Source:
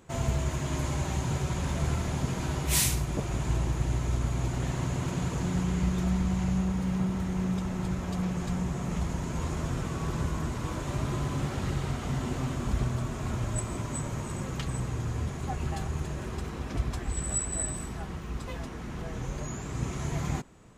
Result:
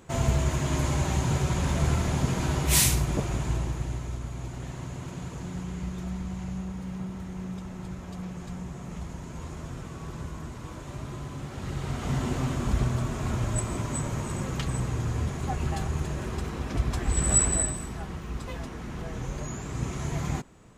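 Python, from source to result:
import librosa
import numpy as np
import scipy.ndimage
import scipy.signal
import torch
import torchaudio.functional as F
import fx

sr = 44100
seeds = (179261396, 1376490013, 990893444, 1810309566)

y = fx.gain(x, sr, db=fx.line((3.1, 4.0), (4.22, -6.5), (11.46, -6.5), (12.12, 3.0), (16.82, 3.0), (17.44, 9.5), (17.78, 1.0)))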